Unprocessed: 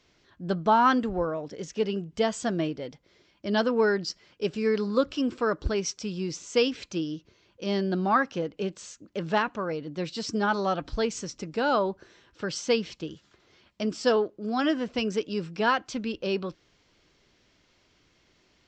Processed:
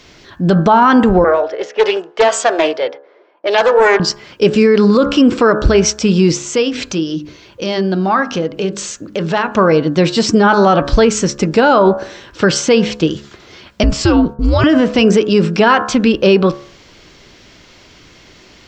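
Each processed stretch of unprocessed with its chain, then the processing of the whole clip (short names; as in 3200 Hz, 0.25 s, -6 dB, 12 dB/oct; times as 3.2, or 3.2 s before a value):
1.24–4 low-pass opened by the level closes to 760 Hz, open at -24 dBFS + HPF 450 Hz 24 dB/oct + Doppler distortion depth 0.24 ms
6.4–9.52 notches 50/100/150/200/250/300/350/400 Hz + compressor 2:1, threshold -42 dBFS
13.83–14.64 frequency shift -160 Hz + expander -46 dBFS + compressor, threshold -28 dBFS
whole clip: de-hum 70.81 Hz, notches 25; dynamic EQ 5000 Hz, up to -6 dB, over -47 dBFS, Q 1; maximiser +23 dB; gain -1 dB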